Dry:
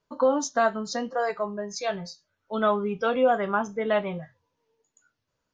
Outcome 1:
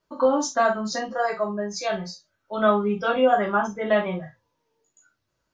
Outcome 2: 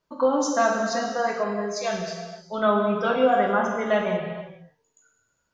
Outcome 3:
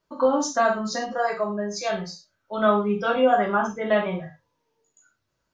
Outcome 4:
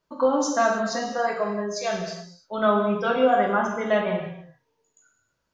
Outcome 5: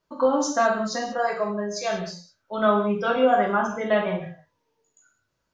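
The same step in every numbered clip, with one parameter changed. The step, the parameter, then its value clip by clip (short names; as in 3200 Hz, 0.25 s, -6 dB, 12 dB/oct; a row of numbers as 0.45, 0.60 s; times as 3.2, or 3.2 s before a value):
non-linear reverb, gate: 90, 520, 140, 350, 220 ms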